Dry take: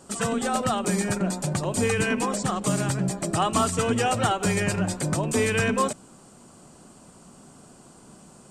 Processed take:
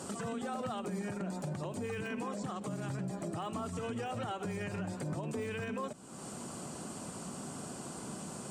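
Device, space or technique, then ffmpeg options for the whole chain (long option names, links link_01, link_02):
podcast mastering chain: -af "highpass=82,deesser=0.85,acompressor=threshold=-45dB:ratio=3,alimiter=level_in=12.5dB:limit=-24dB:level=0:latency=1:release=76,volume=-12.5dB,volume=7.5dB" -ar 48000 -c:a libmp3lame -b:a 96k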